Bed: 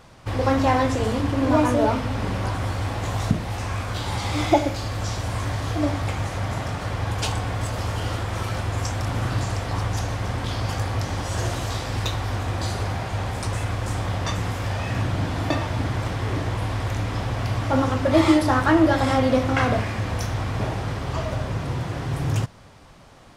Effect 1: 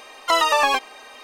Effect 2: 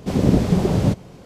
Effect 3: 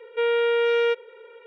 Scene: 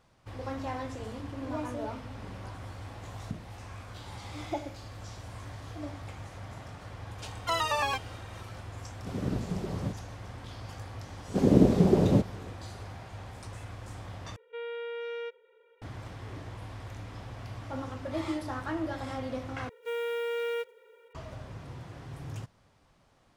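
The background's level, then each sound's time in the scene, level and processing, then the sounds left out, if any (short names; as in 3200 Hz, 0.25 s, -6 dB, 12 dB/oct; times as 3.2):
bed -16.5 dB
7.19 add 1 -11 dB
8.99 add 2 -16.5 dB
11.28 add 2 -10.5 dB + bell 370 Hz +9.5 dB 2.5 oct
14.36 replace with 3 -16 dB
19.69 replace with 3 -11 dB + block floating point 5-bit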